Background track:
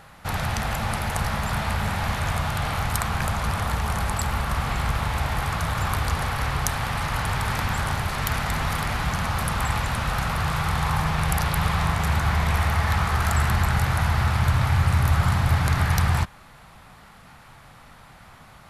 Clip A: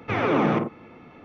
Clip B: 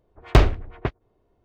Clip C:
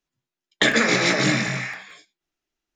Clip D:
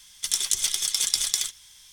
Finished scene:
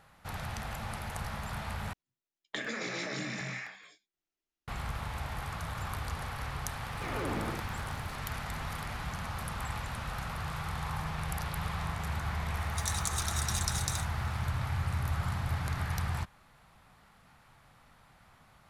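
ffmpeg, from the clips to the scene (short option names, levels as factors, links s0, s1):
-filter_complex "[0:a]volume=0.237[s0];[3:a]acompressor=threshold=0.0708:ratio=6:attack=3.2:release=140:knee=1:detection=peak[s1];[1:a]aeval=exprs='val(0)+0.5*0.0158*sgn(val(0))':c=same[s2];[4:a]afreqshift=330[s3];[s0]asplit=2[s4][s5];[s4]atrim=end=1.934[s6];[s1]atrim=end=2.75,asetpts=PTS-STARTPTS,volume=0.316[s7];[s5]atrim=start=4.676[s8];[s2]atrim=end=1.24,asetpts=PTS-STARTPTS,volume=0.168,afade=t=in:d=0.004:c=hsin,afade=t=out:st=1.236:d=0.004:c=hsin,adelay=6920[s9];[s3]atrim=end=1.92,asetpts=PTS-STARTPTS,volume=0.266,afade=t=in:d=0.004:c=hsin,afade=t=out:st=1.916:d=0.004:c=hsin,adelay=12540[s10];[s6][s7]acrossfade=d=0.004:c1=hsin:c2=hsin[s11];[s11][s8]acrossfade=d=0.004:c1=hsin:c2=hsin[s12];[s12][s9][s10]amix=inputs=3:normalize=0"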